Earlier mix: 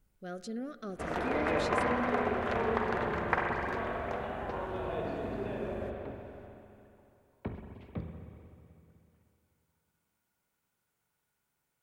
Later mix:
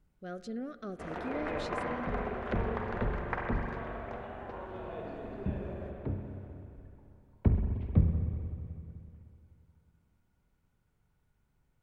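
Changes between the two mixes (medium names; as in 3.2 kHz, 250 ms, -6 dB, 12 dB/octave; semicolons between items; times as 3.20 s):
first sound -5.5 dB; second sound: remove high-pass 650 Hz 6 dB/octave; master: add treble shelf 5.7 kHz -11 dB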